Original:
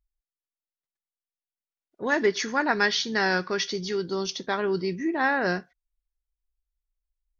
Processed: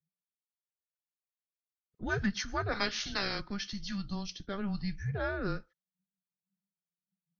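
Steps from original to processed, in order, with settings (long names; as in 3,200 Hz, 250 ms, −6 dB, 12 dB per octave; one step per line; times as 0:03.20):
0:02.71–0:03.39: ceiling on every frequency bin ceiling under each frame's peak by 18 dB
frequency shifter −200 Hz
noise reduction from a noise print of the clip's start 17 dB
rotating-speaker cabinet horn 7 Hz, later 1 Hz, at 0:02.30
level −6 dB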